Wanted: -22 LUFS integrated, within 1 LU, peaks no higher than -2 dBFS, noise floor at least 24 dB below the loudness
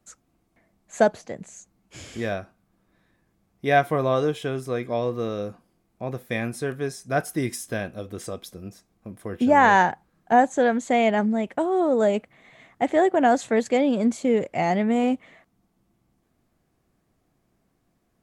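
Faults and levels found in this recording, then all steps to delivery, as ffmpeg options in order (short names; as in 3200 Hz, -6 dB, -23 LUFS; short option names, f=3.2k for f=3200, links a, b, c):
loudness -23.0 LUFS; peak -4.5 dBFS; loudness target -22.0 LUFS
-> -af "volume=1dB"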